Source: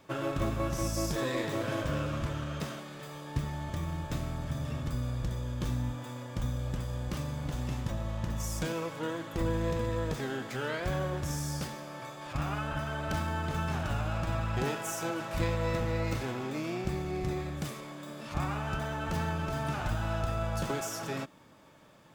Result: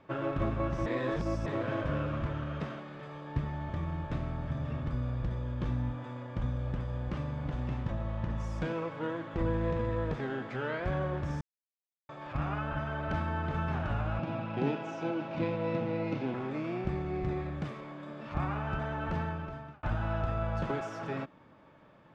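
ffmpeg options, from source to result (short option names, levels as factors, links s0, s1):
-filter_complex "[0:a]asettb=1/sr,asplit=3[s0][s1][s2];[s0]atrim=end=14.194[s3];[s1]atrim=start=14.19:end=16.34,asetpts=PTS-STARTPTS,afade=t=in:d=0.004:c=qsin,afade=t=out:st=2.146:d=0.004:c=qsin,highpass=f=140:w=0.5412,highpass=f=140:w=1.3066,equalizer=f=140:t=q:w=4:g=5,equalizer=f=280:t=q:w=4:g=8,equalizer=f=1200:t=q:w=4:g=-7,equalizer=f=1800:t=q:w=4:g=-8,equalizer=f=2600:t=q:w=4:g=3,lowpass=f=6300:w=0.5412,lowpass=f=6300:w=1.3066[s4];[s2]atrim=start=16.336[s5];[s3][s4]acrossfade=d=0.004:c1=hsin:c2=qsin[s6];[s6][s5]acrossfade=d=0.004:c1=qsin:c2=hsin,asplit=6[s7][s8][s9][s10][s11][s12];[s7]atrim=end=0.862[s13];[s8]atrim=start=0.858:end=1.462,asetpts=PTS-STARTPTS,areverse[s14];[s9]atrim=start=1.458:end=11.41,asetpts=PTS-STARTPTS,afade=t=out:st=9.948:d=0.004:c=hsin[s15];[s10]atrim=start=11.41:end=12.09,asetpts=PTS-STARTPTS,volume=0[s16];[s11]atrim=start=12.09:end=19.83,asetpts=PTS-STARTPTS,afade=t=in:d=0.004:c=hsin,afade=t=out:st=7.01:d=0.73[s17];[s12]atrim=start=19.83,asetpts=PTS-STARTPTS,afade=t=in:d=0.004:c=hsin[s18];[s13][s14]acrossfade=d=0.004:c1=hsin:c2=hsin[s19];[s15][s16][s17][s18]concat=n=4:v=0:a=1[s20];[s19][s20]acrossfade=d=0.004:c1=hsin:c2=hsin,lowpass=2300"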